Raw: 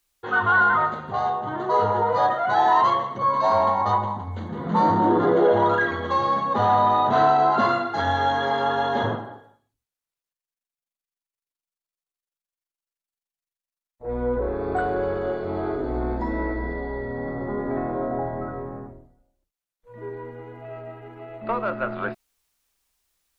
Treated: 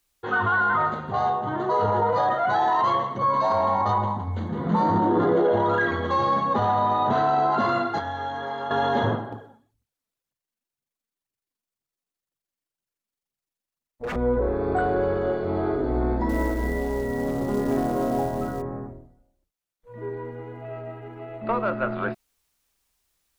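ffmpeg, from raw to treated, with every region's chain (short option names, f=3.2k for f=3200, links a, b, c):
-filter_complex "[0:a]asettb=1/sr,asplit=3[a][b][c];[a]atrim=end=7.984[d];[b]atrim=start=7.98:end=8.71,asetpts=PTS-STARTPTS,afade=t=in:d=0.004:c=qsin,afade=t=out:st=0.726:d=0.004:c=qsin,highpass=58,acrossover=split=590|1600[e][f][g];[e]acompressor=threshold=-41dB:ratio=4[h];[f]acompressor=threshold=-33dB:ratio=4[i];[g]acompressor=threshold=-45dB:ratio=4[j];[h][i][j]amix=inputs=3:normalize=0[k];[c]atrim=start=8.706[l];[d][k]acrossfade=d=0.004:c1=hsin:c2=qsin[m];[m][l]acrossfade=d=0.004:c1=qsin:c2=hsin,asettb=1/sr,asplit=3[n][o][p];[n]atrim=end=9.324[q];[o]atrim=start=9.32:end=14.16,asetpts=PTS-STARTPTS,afade=t=in:d=0.004:c=qsin,afade=t=out:st=4.836:d=0.004:c=qsin,equalizer=f=190:t=o:w=2.7:g=5.5,aphaser=in_gain=1:out_gain=1:delay=4.8:decay=0.52:speed=2:type=triangular,aeval=exprs='0.0501*(abs(mod(val(0)/0.0501+3,4)-2)-1)':c=same[r];[p]atrim=start=14.156[s];[q][r]acrossfade=d=0.004:c1=hsin:c2=qsin[t];[t][s]acrossfade=d=0.004:c1=qsin:c2=hsin,asettb=1/sr,asplit=3[u][v][w];[u]atrim=end=16.294[x];[v]atrim=start=16.29:end=18.62,asetpts=PTS-STARTPTS,afade=t=in:d=0.004:c=qsin,afade=t=out:st=2.326:d=0.004:c=qsin,asplit=2[y][z];[z]adelay=29,volume=-10dB[aa];[y][aa]amix=inputs=2:normalize=0,atrim=end_sample=102753,acrusher=bits=5:mode=log:mix=0:aa=0.000001[ab];[w]atrim=start=18.616[ac];[x][ab]acrossfade=d=0.004:c1=hsin:c2=qsin[ad];[ad][ac]acrossfade=d=0.004:c1=qsin:c2=hsin,alimiter=limit=-15.5dB:level=0:latency=1:release=12,equalizer=f=120:w=0.3:g=3.5"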